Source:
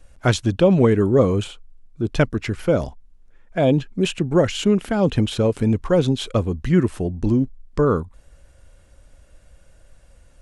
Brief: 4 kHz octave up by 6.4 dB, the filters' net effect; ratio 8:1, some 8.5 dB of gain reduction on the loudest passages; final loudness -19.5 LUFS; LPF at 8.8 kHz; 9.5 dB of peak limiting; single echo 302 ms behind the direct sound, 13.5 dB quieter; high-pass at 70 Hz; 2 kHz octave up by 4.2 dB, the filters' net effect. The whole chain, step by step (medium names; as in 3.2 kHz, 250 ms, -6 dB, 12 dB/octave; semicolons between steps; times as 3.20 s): high-pass 70 Hz; low-pass 8.8 kHz; peaking EQ 2 kHz +4 dB; peaking EQ 4 kHz +7 dB; compression 8:1, threshold -19 dBFS; peak limiter -17 dBFS; delay 302 ms -13.5 dB; trim +7.5 dB